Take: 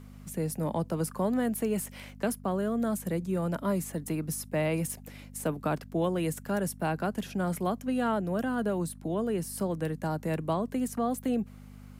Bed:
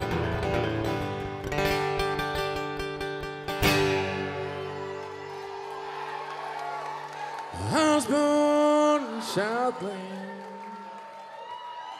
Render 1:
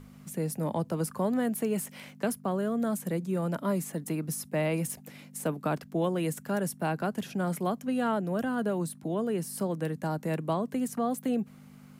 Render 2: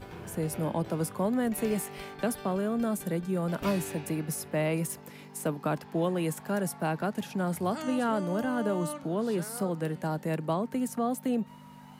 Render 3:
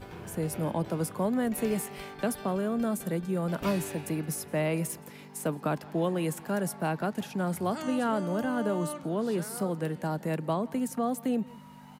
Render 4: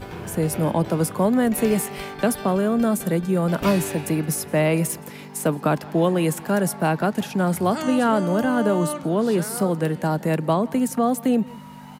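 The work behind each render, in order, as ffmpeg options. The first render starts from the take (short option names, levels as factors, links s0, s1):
-af "bandreject=f=50:t=h:w=4,bandreject=f=100:t=h:w=4"
-filter_complex "[1:a]volume=0.158[s0];[0:a][s0]amix=inputs=2:normalize=0"
-filter_complex "[0:a]asplit=2[s0][s1];[s1]adelay=169.1,volume=0.0794,highshelf=f=4000:g=-3.8[s2];[s0][s2]amix=inputs=2:normalize=0"
-af "volume=2.82"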